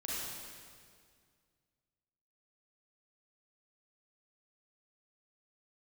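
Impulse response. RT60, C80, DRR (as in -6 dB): 2.0 s, -2.0 dB, -7.0 dB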